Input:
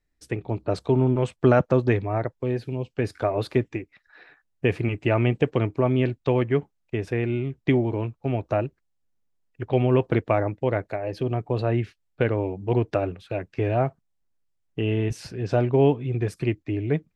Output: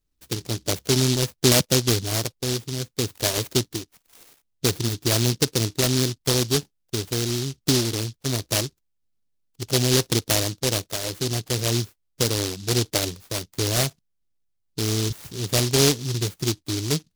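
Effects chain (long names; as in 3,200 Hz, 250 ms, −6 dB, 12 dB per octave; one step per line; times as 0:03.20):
short delay modulated by noise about 4,600 Hz, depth 0.31 ms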